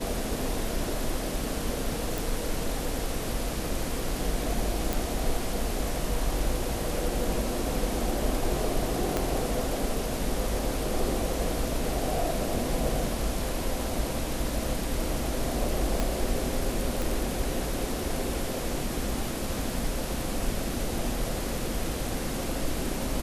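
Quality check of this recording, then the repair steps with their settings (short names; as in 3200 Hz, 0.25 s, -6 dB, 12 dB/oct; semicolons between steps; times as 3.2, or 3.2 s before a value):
2.18 pop
4.93 pop
9.17 pop -12 dBFS
16 pop -13 dBFS
17.02 pop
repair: de-click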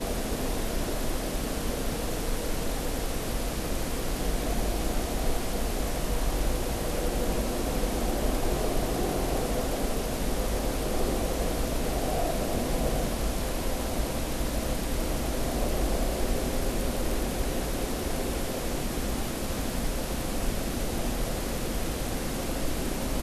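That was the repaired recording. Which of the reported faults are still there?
9.17 pop
16 pop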